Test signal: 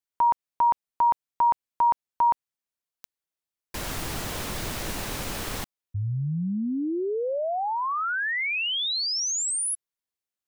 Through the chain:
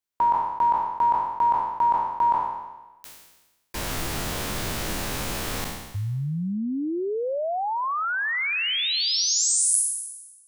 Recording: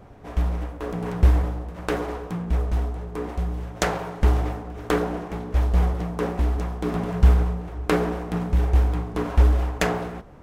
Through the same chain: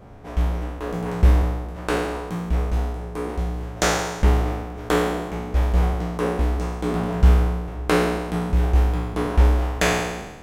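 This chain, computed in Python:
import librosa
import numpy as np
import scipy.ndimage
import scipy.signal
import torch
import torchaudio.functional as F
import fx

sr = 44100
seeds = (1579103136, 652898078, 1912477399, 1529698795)

y = fx.spec_trails(x, sr, decay_s=1.13)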